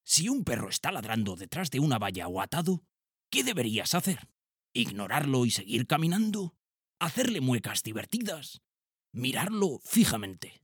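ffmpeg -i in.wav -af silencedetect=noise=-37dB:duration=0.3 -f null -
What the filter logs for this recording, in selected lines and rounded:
silence_start: 2.78
silence_end: 3.33 | silence_duration: 0.55
silence_start: 4.19
silence_end: 4.75 | silence_duration: 0.57
silence_start: 6.48
silence_end: 7.01 | silence_duration: 0.53
silence_start: 8.54
silence_end: 9.15 | silence_duration: 0.61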